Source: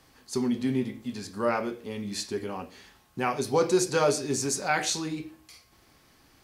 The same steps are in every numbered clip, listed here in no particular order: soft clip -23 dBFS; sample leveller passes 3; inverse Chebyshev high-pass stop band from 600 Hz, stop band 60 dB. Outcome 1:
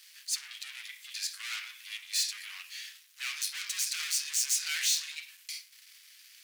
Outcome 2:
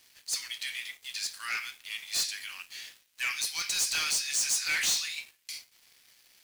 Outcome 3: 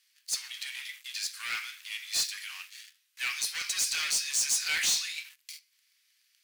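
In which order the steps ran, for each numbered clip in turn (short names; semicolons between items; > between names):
soft clip > sample leveller > inverse Chebyshev high-pass; inverse Chebyshev high-pass > soft clip > sample leveller; sample leveller > inverse Chebyshev high-pass > soft clip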